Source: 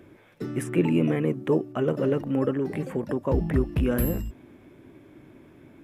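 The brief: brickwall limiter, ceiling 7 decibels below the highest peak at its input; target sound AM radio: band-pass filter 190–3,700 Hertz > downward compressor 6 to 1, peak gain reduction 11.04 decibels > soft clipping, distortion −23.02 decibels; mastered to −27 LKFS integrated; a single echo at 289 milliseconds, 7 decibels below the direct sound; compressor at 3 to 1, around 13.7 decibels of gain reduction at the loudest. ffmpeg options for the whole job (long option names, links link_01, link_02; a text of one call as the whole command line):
ffmpeg -i in.wav -af "acompressor=threshold=-37dB:ratio=3,alimiter=level_in=6dB:limit=-24dB:level=0:latency=1,volume=-6dB,highpass=190,lowpass=3700,aecho=1:1:289:0.447,acompressor=threshold=-44dB:ratio=6,asoftclip=threshold=-37.5dB,volume=22.5dB" out.wav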